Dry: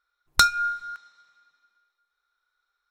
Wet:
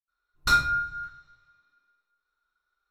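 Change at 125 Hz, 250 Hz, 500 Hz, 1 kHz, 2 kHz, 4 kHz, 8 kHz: +5.0 dB, can't be measured, 0.0 dB, −1.0 dB, −1.0 dB, −6.5 dB, −9.0 dB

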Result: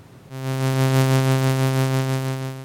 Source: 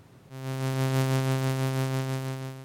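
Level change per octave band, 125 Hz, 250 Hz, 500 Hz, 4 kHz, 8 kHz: +8.0, +8.0, +8.0, +8.0, +8.0 decibels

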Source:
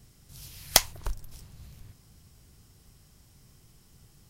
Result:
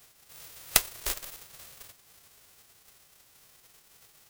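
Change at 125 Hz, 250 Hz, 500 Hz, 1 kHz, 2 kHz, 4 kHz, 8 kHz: −8.5, −4.0, −5.0, −5.0, −0.5, −4.5, −2.0 decibels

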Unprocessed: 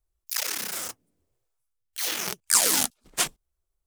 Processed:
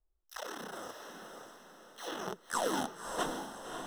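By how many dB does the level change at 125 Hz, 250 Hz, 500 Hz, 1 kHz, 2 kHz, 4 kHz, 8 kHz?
−3.0, 0.0, +1.0, −1.0, −9.0, −15.0, −20.5 decibels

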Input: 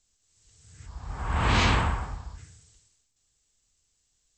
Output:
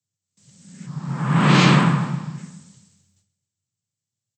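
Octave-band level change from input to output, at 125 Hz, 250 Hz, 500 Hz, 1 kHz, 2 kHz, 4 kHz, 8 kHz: +10.5, +15.5, +8.5, +6.0, +6.5, +6.5, +6.0 decibels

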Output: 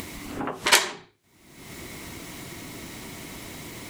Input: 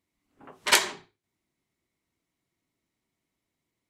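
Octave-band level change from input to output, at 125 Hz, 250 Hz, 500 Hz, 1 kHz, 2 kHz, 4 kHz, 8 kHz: +18.0, +11.0, +4.5, +3.5, +3.0, +3.0, +3.0 decibels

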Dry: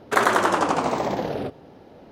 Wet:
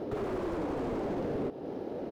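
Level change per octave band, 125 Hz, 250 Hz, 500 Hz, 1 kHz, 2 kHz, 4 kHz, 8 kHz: −5.5 dB, −5.5 dB, −8.0 dB, −19.0 dB, −23.0 dB, −20.5 dB, below −25 dB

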